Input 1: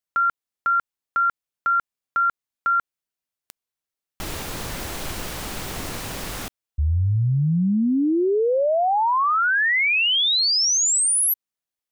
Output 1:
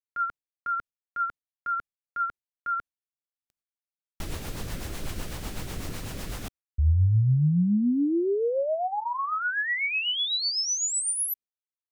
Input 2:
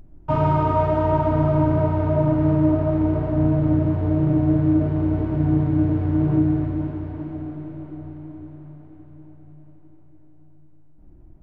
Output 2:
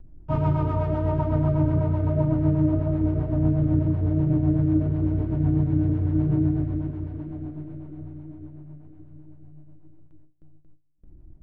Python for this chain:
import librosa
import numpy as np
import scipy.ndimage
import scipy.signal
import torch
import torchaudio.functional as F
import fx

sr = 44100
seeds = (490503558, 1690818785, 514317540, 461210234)

y = fx.gate_hold(x, sr, open_db=-41.0, close_db=-43.0, hold_ms=63.0, range_db=-21, attack_ms=0.43, release_ms=108.0)
y = fx.low_shelf(y, sr, hz=220.0, db=7.5)
y = fx.rotary(y, sr, hz=8.0)
y = y * 10.0 ** (-5.5 / 20.0)